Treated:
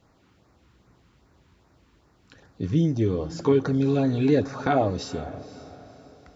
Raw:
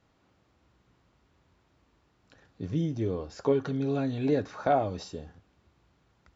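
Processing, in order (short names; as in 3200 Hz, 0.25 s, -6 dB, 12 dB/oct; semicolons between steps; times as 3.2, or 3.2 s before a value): LFO notch sine 2.5 Hz 570–3300 Hz; diffused feedback echo 0.504 s, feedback 40%, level -15.5 dB; gain +7.5 dB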